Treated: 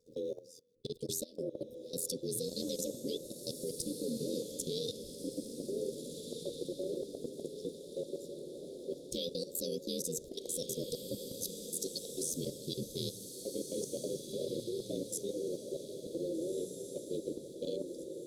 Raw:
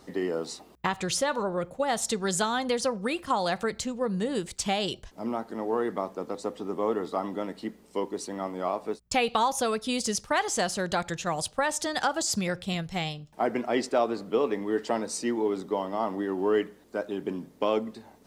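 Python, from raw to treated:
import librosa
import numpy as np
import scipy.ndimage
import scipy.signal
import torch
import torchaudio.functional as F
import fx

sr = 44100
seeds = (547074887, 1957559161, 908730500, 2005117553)

y = scipy.signal.sosfilt(scipy.signal.cheby1(5, 1.0, [470.0, 2700.0], 'bandstop', fs=sr, output='sos'), x)
y = fx.hum_notches(y, sr, base_hz=60, count=9)
y = y * np.sin(2.0 * np.pi * 42.0 * np.arange(len(y)) / sr)
y = fx.formant_shift(y, sr, semitones=4)
y = fx.level_steps(y, sr, step_db=19)
y = fx.echo_diffused(y, sr, ms=1645, feedback_pct=44, wet_db=-6)
y = y * 10.0 ** (1.0 / 20.0)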